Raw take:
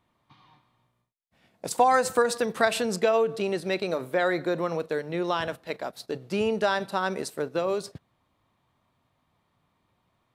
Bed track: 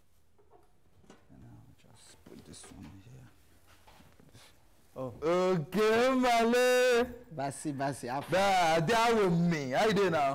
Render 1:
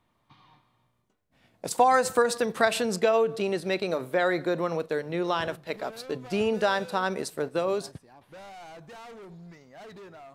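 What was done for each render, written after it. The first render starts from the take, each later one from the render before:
mix in bed track −18.5 dB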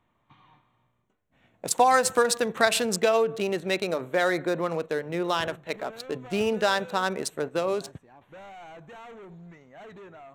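adaptive Wiener filter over 9 samples
high-shelf EQ 2,700 Hz +9 dB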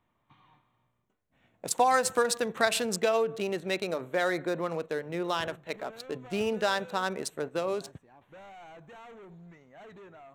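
level −4 dB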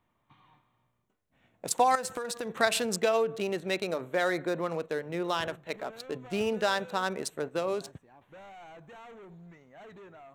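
0:01.95–0:02.60: downward compressor 10 to 1, threshold −30 dBFS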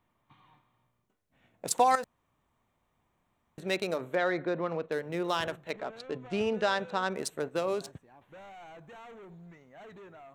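0:02.04–0:03.58: fill with room tone
0:04.15–0:04.92: high-frequency loss of the air 170 metres
0:05.71–0:07.15: high-frequency loss of the air 80 metres

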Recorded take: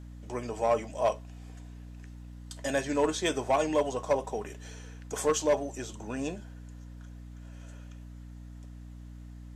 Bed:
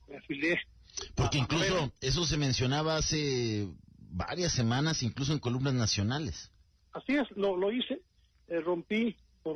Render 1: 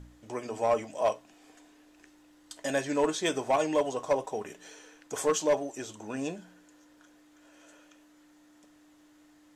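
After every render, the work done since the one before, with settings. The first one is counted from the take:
hum removal 60 Hz, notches 4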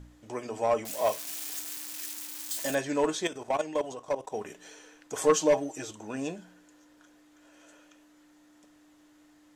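0:00.85–0:02.75: spike at every zero crossing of −27 dBFS
0:03.27–0:04.34: output level in coarse steps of 13 dB
0:05.21–0:05.91: comb filter 6.4 ms, depth 78%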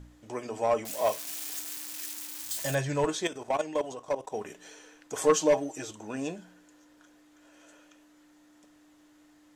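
0:02.43–0:03.07: low shelf with overshoot 180 Hz +7.5 dB, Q 3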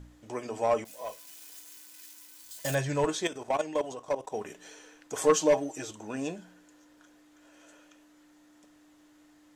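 0:00.84–0:02.65: tuned comb filter 500 Hz, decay 0.26 s, mix 80%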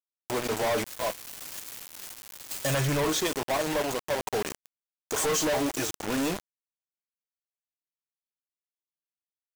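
log-companded quantiser 2 bits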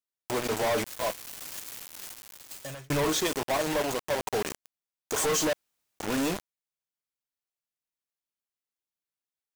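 0:02.07–0:02.90: fade out
0:05.53–0:05.99: fill with room tone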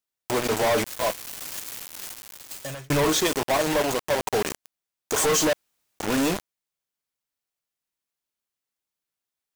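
level +5 dB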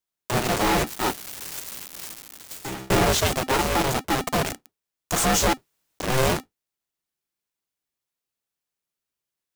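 sub-octave generator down 1 octave, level +2 dB
ring modulator with a square carrier 260 Hz

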